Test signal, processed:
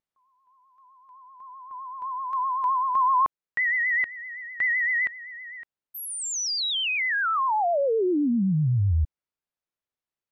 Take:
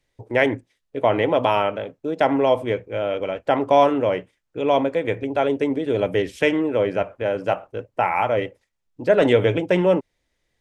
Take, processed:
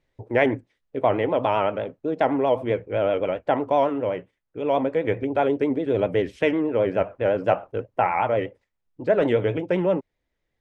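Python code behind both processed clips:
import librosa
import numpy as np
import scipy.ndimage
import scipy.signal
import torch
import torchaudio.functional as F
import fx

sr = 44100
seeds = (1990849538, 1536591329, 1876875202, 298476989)

y = fx.vibrato(x, sr, rate_hz=7.8, depth_cents=75.0)
y = fx.lowpass(y, sr, hz=2000.0, slope=6)
y = fx.rider(y, sr, range_db=4, speed_s=0.5)
y = F.gain(torch.from_numpy(y), -1.5).numpy()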